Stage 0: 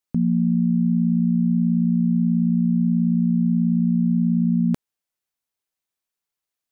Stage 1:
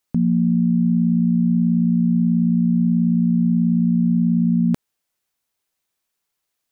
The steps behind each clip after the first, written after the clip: peak limiter -19.5 dBFS, peak gain reduction 6.5 dB; trim +8 dB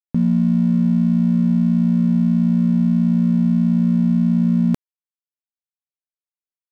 crossover distortion -40.5 dBFS; trim +1.5 dB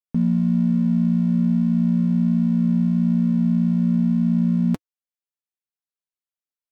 flange 1.2 Hz, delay 3.8 ms, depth 2.1 ms, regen -39%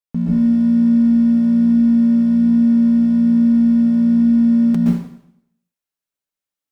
reverberation RT60 0.75 s, pre-delay 113 ms, DRR -5.5 dB

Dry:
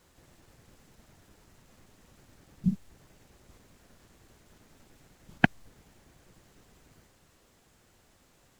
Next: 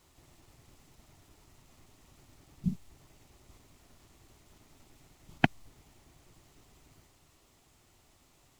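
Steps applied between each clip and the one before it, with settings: graphic EQ with 31 bands 200 Hz -8 dB, 500 Hz -8 dB, 1.6 kHz -8 dB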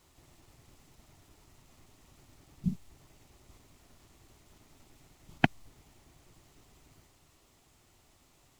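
no audible change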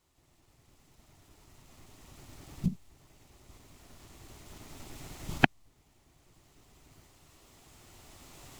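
recorder AGC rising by 7.4 dB/s; trim -9 dB

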